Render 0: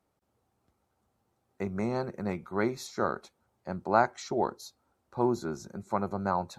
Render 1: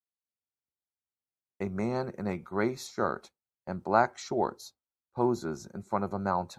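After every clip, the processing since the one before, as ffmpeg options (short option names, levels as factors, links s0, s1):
-af "agate=range=0.0224:threshold=0.00708:ratio=3:detection=peak"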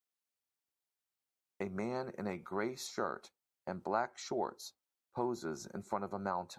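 -af "lowshelf=f=170:g=-10.5,acompressor=threshold=0.00708:ratio=2,volume=1.41"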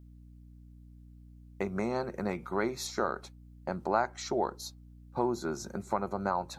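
-af "aeval=exprs='val(0)+0.00141*(sin(2*PI*60*n/s)+sin(2*PI*2*60*n/s)/2+sin(2*PI*3*60*n/s)/3+sin(2*PI*4*60*n/s)/4+sin(2*PI*5*60*n/s)/5)':c=same,volume=2"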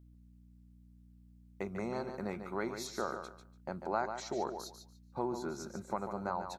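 -af "aecho=1:1:145|290|435:0.398|0.0796|0.0159,volume=0.501"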